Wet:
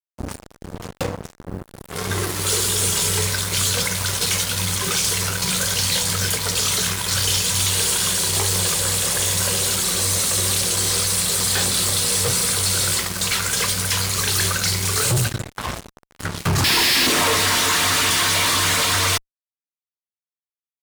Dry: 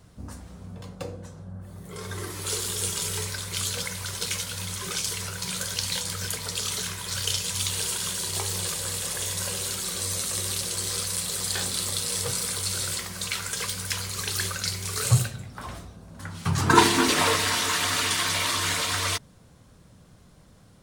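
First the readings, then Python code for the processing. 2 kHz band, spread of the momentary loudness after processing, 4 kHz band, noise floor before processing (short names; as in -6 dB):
+7.0 dB, 13 LU, +8.5 dB, -53 dBFS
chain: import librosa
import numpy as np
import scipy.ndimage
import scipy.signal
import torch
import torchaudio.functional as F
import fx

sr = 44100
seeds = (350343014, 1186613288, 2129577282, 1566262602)

y = fx.mod_noise(x, sr, seeds[0], snr_db=34)
y = fx.spec_paint(y, sr, seeds[1], shape='noise', start_s=16.64, length_s=0.43, low_hz=1600.0, high_hz=5500.0, level_db=-11.0)
y = fx.fuzz(y, sr, gain_db=34.0, gate_db=-37.0)
y = y * librosa.db_to_amplitude(-3.0)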